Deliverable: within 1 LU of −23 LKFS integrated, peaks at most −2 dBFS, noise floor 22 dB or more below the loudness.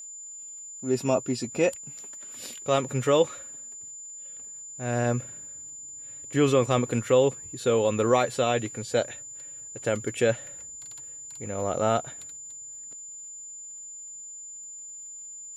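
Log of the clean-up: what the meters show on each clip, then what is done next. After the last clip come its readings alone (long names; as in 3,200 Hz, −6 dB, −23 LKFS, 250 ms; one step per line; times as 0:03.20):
crackle rate 37 per second; interfering tone 7,100 Hz; level of the tone −39 dBFS; integrated loudness −29.0 LKFS; sample peak −8.5 dBFS; target loudness −23.0 LKFS
→ click removal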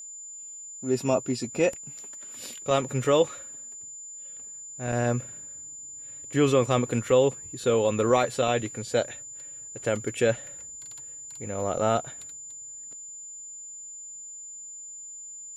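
crackle rate 0.064 per second; interfering tone 7,100 Hz; level of the tone −39 dBFS
→ notch filter 7,100 Hz, Q 30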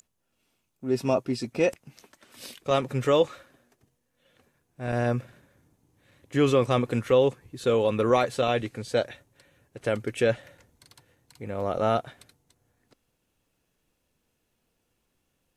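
interfering tone none found; integrated loudness −26.5 LKFS; sample peak −9.0 dBFS; target loudness −23.0 LKFS
→ level +3.5 dB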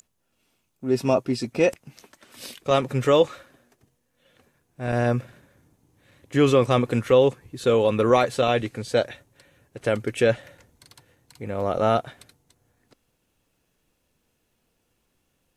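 integrated loudness −22.5 LKFS; sample peak −5.5 dBFS; background noise floor −73 dBFS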